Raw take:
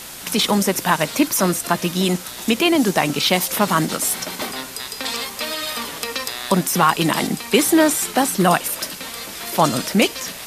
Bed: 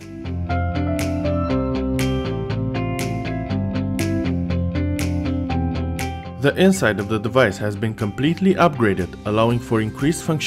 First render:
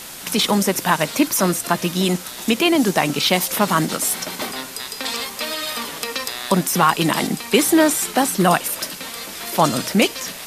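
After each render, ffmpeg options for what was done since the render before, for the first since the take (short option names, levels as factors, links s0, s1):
-af "bandreject=f=60:t=h:w=4,bandreject=f=120:t=h:w=4"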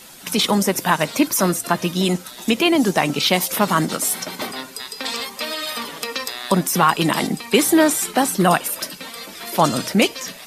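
-af "afftdn=nr=9:nf=-35"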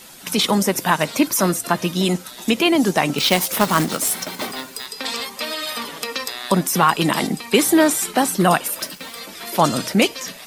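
-filter_complex "[0:a]asettb=1/sr,asplit=3[s0][s1][s2];[s0]atrim=end=3.184[s3];[s1]atrim=start=3.18:end=4.86,asetpts=PTS-STARTPTS,afade=t=in:d=0.004:c=qsin,afade=t=out:st=1.676:d=0.004:c=qsin,acrusher=bits=2:mode=log:mix=0:aa=0.000001[s4];[s2]atrim=start=4.856[s5];[s3][s4]acrossfade=d=0.004:c1=hsin:c2=qsin[s6];[s6][s5]acrossfade=d=0.004:c1=qsin:c2=hsin,asettb=1/sr,asplit=3[s7][s8][s9];[s7]atrim=end=8.664[s10];[s8]atrim=start=8.66:end=9.2,asetpts=PTS-STARTPTS,afade=t=in:d=0.004:c=qsin,afade=t=out:st=0.536:d=0.004:c=qsin,aeval=exprs='val(0)*gte(abs(val(0)),0.0106)':c=same[s11];[s9]atrim=start=9.196[s12];[s10][s11]acrossfade=d=0.004:c1=hsin:c2=qsin[s13];[s13][s12]acrossfade=d=0.004:c1=qsin:c2=hsin"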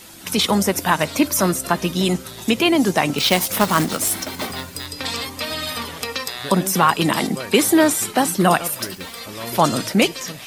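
-filter_complex "[1:a]volume=0.141[s0];[0:a][s0]amix=inputs=2:normalize=0"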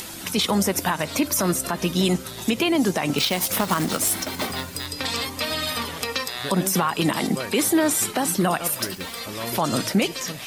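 -af "acompressor=mode=upward:threshold=0.0355:ratio=2.5,alimiter=limit=0.266:level=0:latency=1:release=100"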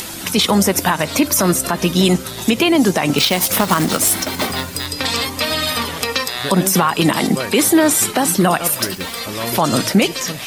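-af "volume=2.24"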